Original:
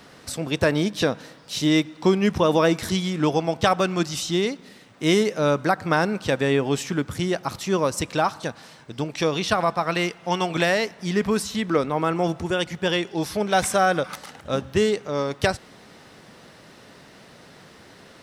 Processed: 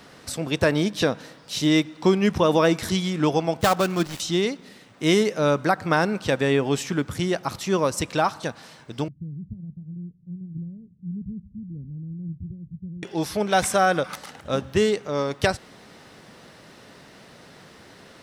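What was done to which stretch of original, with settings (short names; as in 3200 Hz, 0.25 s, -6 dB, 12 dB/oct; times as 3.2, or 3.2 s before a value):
3.6–4.2 switching dead time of 0.11 ms
9.08–13.03 inverse Chebyshev low-pass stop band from 990 Hz, stop band 80 dB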